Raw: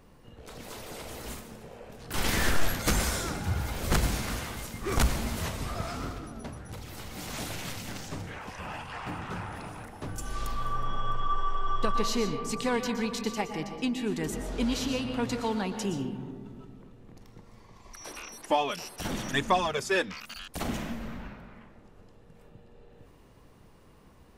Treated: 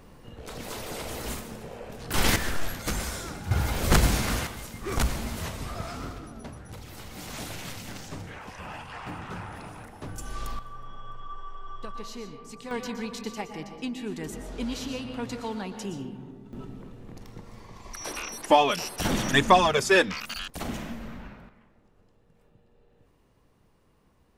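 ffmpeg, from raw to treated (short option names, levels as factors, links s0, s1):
-af "asetnsamples=n=441:p=0,asendcmd='2.36 volume volume -4dB;3.51 volume volume 5.5dB;4.47 volume volume -1dB;10.59 volume volume -11dB;12.71 volume volume -3.5dB;16.53 volume volume 7dB;20.5 volume volume -1dB;21.49 volume volume -8dB',volume=1.88"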